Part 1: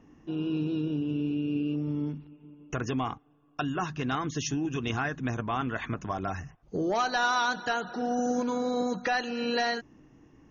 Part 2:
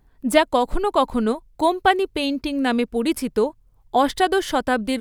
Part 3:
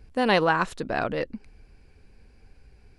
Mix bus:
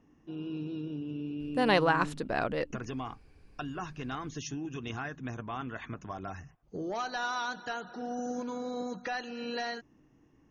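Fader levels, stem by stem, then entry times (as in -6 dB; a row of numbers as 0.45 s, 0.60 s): -7.5 dB, mute, -4.0 dB; 0.00 s, mute, 1.40 s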